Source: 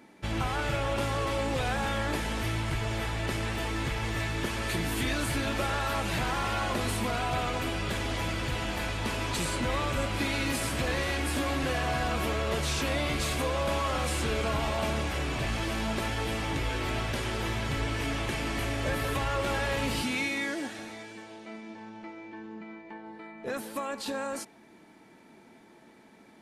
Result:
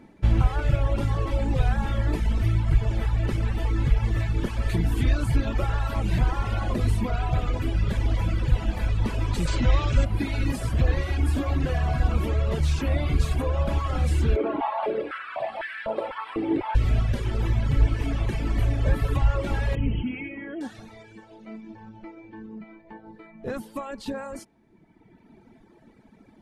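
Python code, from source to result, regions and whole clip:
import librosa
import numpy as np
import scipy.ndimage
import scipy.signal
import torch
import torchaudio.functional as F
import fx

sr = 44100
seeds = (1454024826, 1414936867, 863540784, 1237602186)

y = fx.chain(x, sr, fx.lowpass(hz=6900.0, slope=24),
    fx.high_shelf(hz=2800.0, db=11.5), at=(9.47, 10.05))
y = fx.chain(y, sr, fx.moving_average(points=7),
    fx.filter_held_highpass(hz=4.0, low_hz=340.0, high_hz=1700.0), at=(14.36, 16.75))
y = fx.chain(y, sr, fx.brickwall_lowpass(high_hz=3300.0),
    fx.peak_eq(hz=1200.0, db=-7.0, octaves=1.6), at=(19.75, 20.61))
y = fx.low_shelf(y, sr, hz=120.0, db=11.5)
y = fx.dereverb_blind(y, sr, rt60_s=1.7)
y = fx.tilt_eq(y, sr, slope=-2.0)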